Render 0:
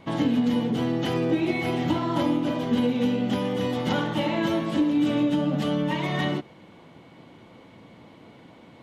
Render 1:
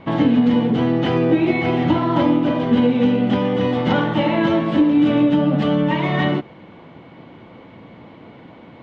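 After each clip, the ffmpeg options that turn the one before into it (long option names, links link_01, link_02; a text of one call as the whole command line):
ffmpeg -i in.wav -af "lowpass=2900,volume=7.5dB" out.wav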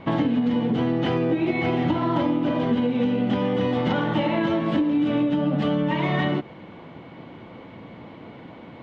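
ffmpeg -i in.wav -af "acompressor=threshold=-19dB:ratio=6" out.wav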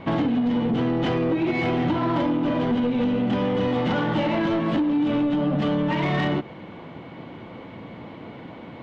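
ffmpeg -i in.wav -af "asoftclip=type=tanh:threshold=-19.5dB,volume=2.5dB" out.wav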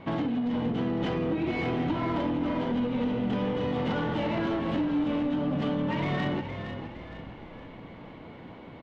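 ffmpeg -i in.wav -filter_complex "[0:a]asplit=6[link_01][link_02][link_03][link_04][link_05][link_06];[link_02]adelay=464,afreqshift=-44,volume=-8.5dB[link_07];[link_03]adelay=928,afreqshift=-88,volume=-15.2dB[link_08];[link_04]adelay=1392,afreqshift=-132,volume=-22dB[link_09];[link_05]adelay=1856,afreqshift=-176,volume=-28.7dB[link_10];[link_06]adelay=2320,afreqshift=-220,volume=-35.5dB[link_11];[link_01][link_07][link_08][link_09][link_10][link_11]amix=inputs=6:normalize=0,volume=-6.5dB" out.wav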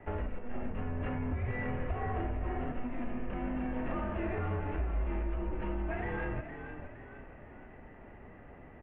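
ffmpeg -i in.wav -af "highpass=frequency=230:width_type=q:width=0.5412,highpass=frequency=230:width_type=q:width=1.307,lowpass=frequency=2600:width_type=q:width=0.5176,lowpass=frequency=2600:width_type=q:width=0.7071,lowpass=frequency=2600:width_type=q:width=1.932,afreqshift=-240,volume=-4dB" out.wav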